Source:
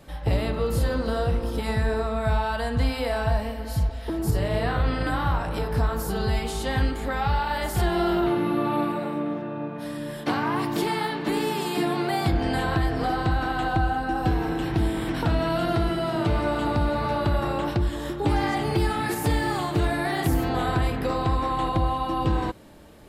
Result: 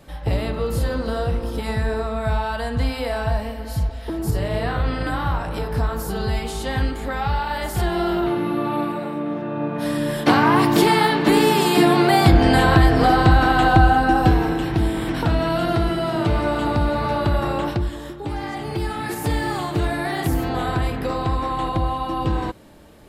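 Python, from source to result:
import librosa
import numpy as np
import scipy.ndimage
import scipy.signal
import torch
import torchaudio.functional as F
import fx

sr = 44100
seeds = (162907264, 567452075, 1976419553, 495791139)

y = fx.gain(x, sr, db=fx.line((9.2, 1.5), (9.88, 10.0), (14.09, 10.0), (14.67, 3.5), (17.63, 3.5), (18.25, -5.5), (19.39, 1.5)))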